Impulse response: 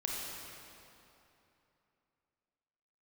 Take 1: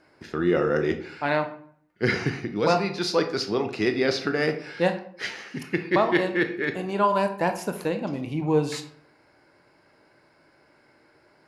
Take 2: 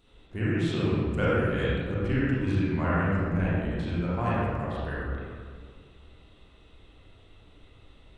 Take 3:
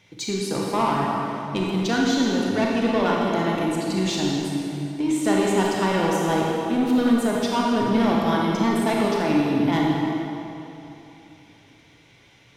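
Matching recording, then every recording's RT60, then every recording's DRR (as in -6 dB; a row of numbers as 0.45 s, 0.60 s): 3; 0.60 s, 1.9 s, 3.0 s; 7.0 dB, -9.0 dB, -3.0 dB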